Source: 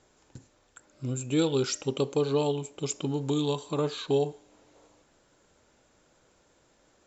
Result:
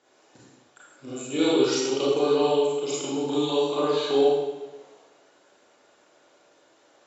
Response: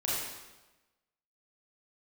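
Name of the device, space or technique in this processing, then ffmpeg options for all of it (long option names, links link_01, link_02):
supermarket ceiling speaker: -filter_complex "[0:a]highpass=320,lowpass=6000[link_01];[1:a]atrim=start_sample=2205[link_02];[link_01][link_02]afir=irnorm=-1:irlink=0"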